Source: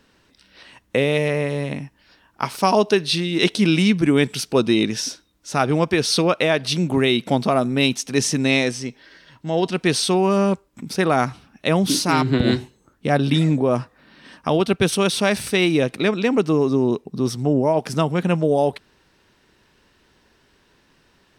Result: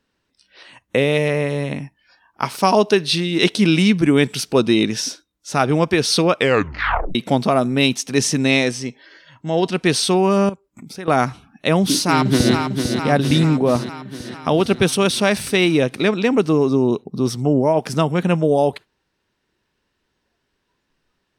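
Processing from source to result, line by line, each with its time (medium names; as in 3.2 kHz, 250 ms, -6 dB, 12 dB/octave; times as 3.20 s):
6.35 s: tape stop 0.80 s
10.49–11.08 s: compression 2:1, threshold -41 dBFS
11.80–12.54 s: echo throw 450 ms, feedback 65%, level -6 dB
whole clip: spectral noise reduction 15 dB; trim +2 dB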